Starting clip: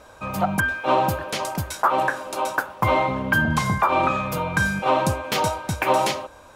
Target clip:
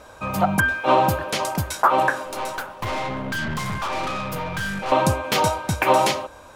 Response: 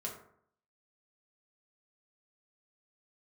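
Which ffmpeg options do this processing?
-filter_complex "[0:a]asettb=1/sr,asplit=3[s0][s1][s2];[s0]atrim=end=2.254[s3];[s1]atrim=start=2.25:end=4.92,asetpts=PTS-STARTPTS,afade=t=in:d=0.004:c=qsin,afade=t=out:st=2.666:d=0.004:c=qsin,aeval=exprs='(tanh(22.4*val(0)+0.4)-tanh(0.4))/22.4':c=same[s4];[s2]atrim=start=4.916[s5];[s3][s4]acrossfade=d=0.004:c1=hsin:c2=qsin[s6];[s6][s5]acrossfade=d=0.004:c1=qsin:c2=hsin,volume=1.33"

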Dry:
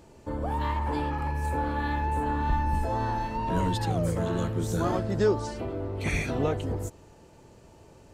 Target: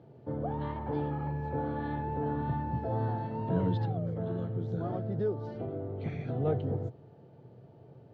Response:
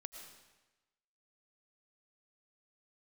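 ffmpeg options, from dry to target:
-filter_complex "[0:a]lowshelf=f=250:g=10,asplit=3[s0][s1][s2];[s0]afade=t=out:st=3.85:d=0.02[s3];[s1]acompressor=threshold=0.0562:ratio=3,afade=t=in:st=3.85:d=0.02,afade=t=out:st=6.45:d=0.02[s4];[s2]afade=t=in:st=6.45:d=0.02[s5];[s3][s4][s5]amix=inputs=3:normalize=0,highpass=f=110:w=0.5412,highpass=f=110:w=1.3066,equalizer=f=130:t=q:w=4:g=10,equalizer=f=450:t=q:w=4:g=6,equalizer=f=720:t=q:w=4:g=7,equalizer=f=1000:t=q:w=4:g=-6,equalizer=f=1900:t=q:w=4:g=-4,equalizer=f=2600:t=q:w=4:g=-9,lowpass=f=3400:w=0.5412,lowpass=f=3400:w=1.3066,volume=0.398"

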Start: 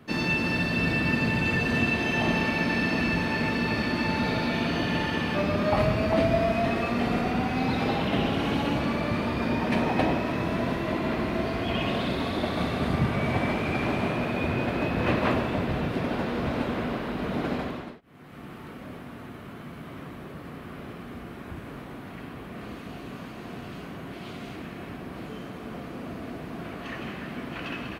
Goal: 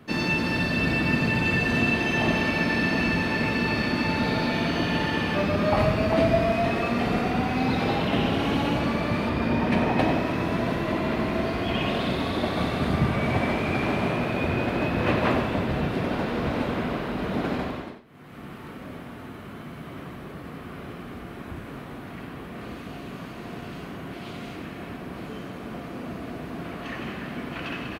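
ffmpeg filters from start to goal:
-filter_complex "[0:a]asettb=1/sr,asplit=3[s0][s1][s2];[s0]atrim=end=9.294[s3];[s1]atrim=start=9.29:end=9.99,asetpts=PTS-STARTPTS,afade=t=in:d=0.004:c=qsin,afade=t=out:st=0.696:d=0.004:c=qsin,bass=f=250:g=2,treble=f=4000:g=-4[s4];[s2]atrim=start=9.986[s5];[s3][s4]acrossfade=d=0.004:c1=hsin:c2=qsin[s6];[s6][s5]acrossfade=d=0.004:c1=qsin:c2=hsin,aecho=1:1:90:0.299,volume=1.19"

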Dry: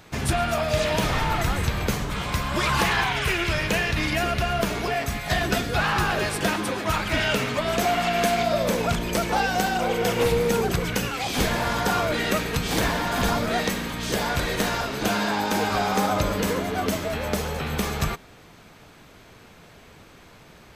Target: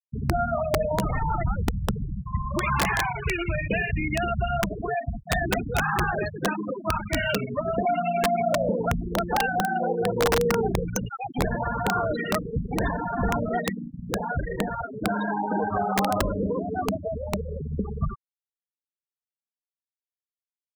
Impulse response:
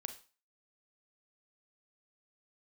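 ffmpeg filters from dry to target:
-af "afftfilt=real='re*gte(hypot(re,im),0.158)':imag='im*gte(hypot(re,im),0.158)':win_size=1024:overlap=0.75,aexciter=amount=7.5:drive=8.7:freq=5100,aeval=exprs='(mod(5.31*val(0)+1,2)-1)/5.31':c=same"

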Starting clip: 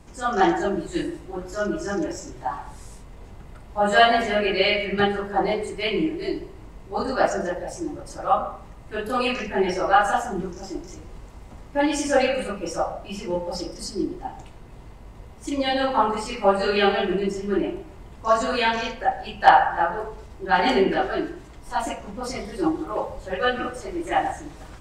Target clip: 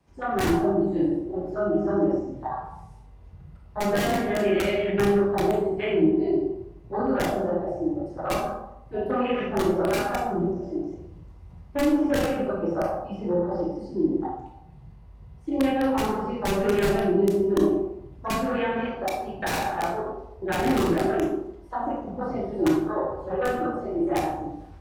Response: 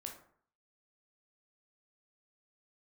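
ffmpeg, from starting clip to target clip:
-filter_complex "[0:a]acrossover=split=3400[s0][s1];[s1]acompressor=threshold=0.00355:ratio=4:attack=1:release=60[s2];[s0][s2]amix=inputs=2:normalize=0,asplit=2[s3][s4];[s4]volume=11.2,asoftclip=hard,volume=0.0891,volume=0.316[s5];[s3][s5]amix=inputs=2:normalize=0,afwtdn=0.0447,highpass=90,equalizer=f=7500:t=o:w=0.37:g=-9,acrossover=split=190|1200[s6][s7][s8];[s7]aeval=exprs='(mod(4.73*val(0)+1,2)-1)/4.73':c=same[s9];[s6][s9][s8]amix=inputs=3:normalize=0,acrossover=split=460[s10][s11];[s11]acompressor=threshold=0.0355:ratio=6[s12];[s10][s12]amix=inputs=2:normalize=0[s13];[1:a]atrim=start_sample=2205,asetrate=30429,aresample=44100[s14];[s13][s14]afir=irnorm=-1:irlink=0,volume=1.33"

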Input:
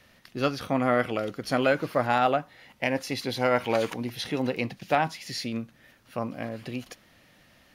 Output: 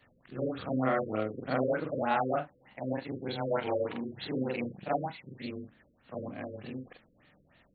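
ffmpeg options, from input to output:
-af "afftfilt=real='re':imag='-im':win_size=4096:overlap=0.75,afftfilt=real='re*lt(b*sr/1024,540*pow(4600/540,0.5+0.5*sin(2*PI*3.3*pts/sr)))':imag='im*lt(b*sr/1024,540*pow(4600/540,0.5+0.5*sin(2*PI*3.3*pts/sr)))':win_size=1024:overlap=0.75"

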